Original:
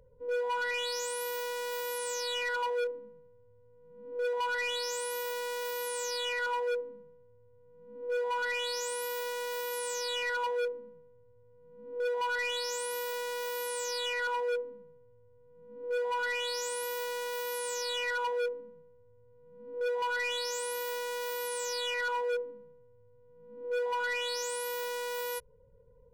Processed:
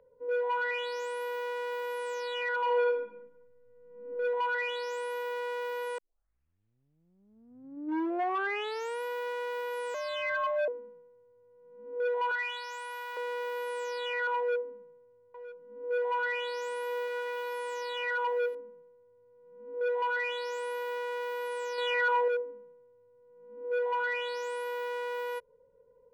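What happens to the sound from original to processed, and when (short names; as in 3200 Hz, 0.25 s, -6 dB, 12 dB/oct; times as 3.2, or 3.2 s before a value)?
2.62–4.1 reverb throw, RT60 0.85 s, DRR -0.5 dB
5.98 tape start 3.04 s
9.94–10.68 frequency shift +110 Hz
12.31–13.17 HPF 690 Hz 24 dB/oct
14.38–18.55 echo 0.962 s -15.5 dB
21.78–22.28 gain +4 dB
whole clip: three-band isolator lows -20 dB, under 250 Hz, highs -19 dB, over 2800 Hz; gain +2 dB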